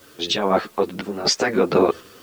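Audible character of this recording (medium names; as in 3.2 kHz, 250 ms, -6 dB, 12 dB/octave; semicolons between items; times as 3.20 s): random-step tremolo 4 Hz, depth 80%; a quantiser's noise floor 10-bit, dither triangular; a shimmering, thickened sound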